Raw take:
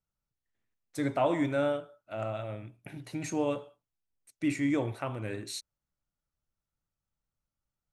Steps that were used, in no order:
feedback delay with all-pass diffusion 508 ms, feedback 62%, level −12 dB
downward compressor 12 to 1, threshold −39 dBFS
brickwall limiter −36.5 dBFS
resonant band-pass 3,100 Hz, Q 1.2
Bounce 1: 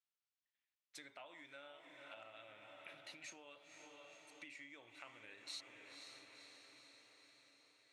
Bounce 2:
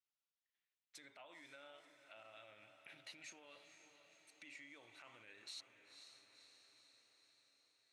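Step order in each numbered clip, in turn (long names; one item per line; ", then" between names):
feedback delay with all-pass diffusion, then downward compressor, then resonant band-pass, then brickwall limiter
downward compressor, then feedback delay with all-pass diffusion, then brickwall limiter, then resonant band-pass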